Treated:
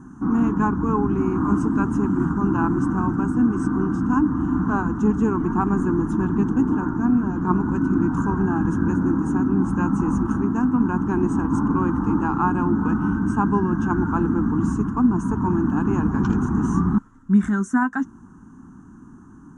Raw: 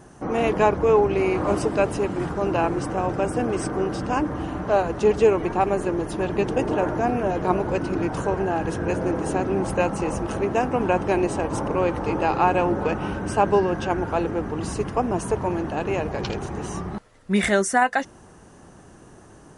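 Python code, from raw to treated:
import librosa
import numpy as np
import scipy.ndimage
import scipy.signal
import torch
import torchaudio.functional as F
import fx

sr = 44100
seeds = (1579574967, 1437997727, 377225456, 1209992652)

y = fx.curve_eq(x, sr, hz=(130.0, 260.0, 580.0, 970.0, 1500.0, 2100.0, 3200.0, 4600.0, 6600.0, 9400.0), db=(0, 11, -28, 0, 0, -23, -20, -27, -7, -18))
y = fx.rider(y, sr, range_db=10, speed_s=0.5)
y = F.gain(torch.from_numpy(y), 2.5).numpy()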